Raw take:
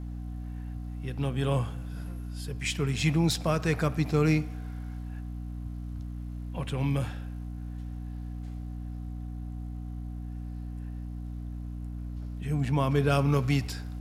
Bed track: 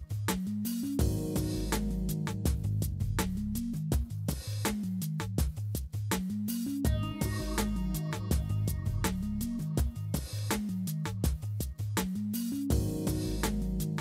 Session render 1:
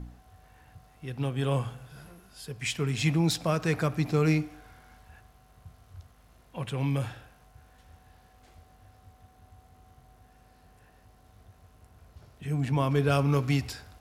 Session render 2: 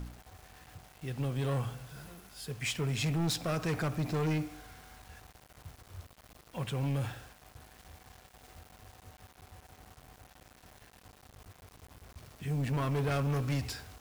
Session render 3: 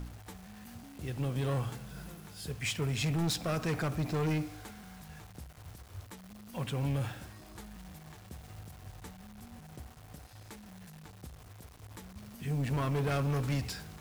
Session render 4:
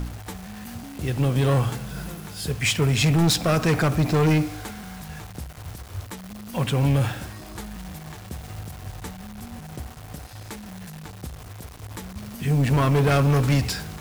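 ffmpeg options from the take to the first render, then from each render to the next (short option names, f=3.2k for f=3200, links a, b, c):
-af "bandreject=f=60:t=h:w=4,bandreject=f=120:t=h:w=4,bandreject=f=180:t=h:w=4,bandreject=f=240:t=h:w=4,bandreject=f=300:t=h:w=4"
-af "asoftclip=type=tanh:threshold=-27.5dB,acrusher=bits=8:mix=0:aa=0.000001"
-filter_complex "[1:a]volume=-18dB[a];[0:a][a]amix=inputs=2:normalize=0"
-af "volume=12dB"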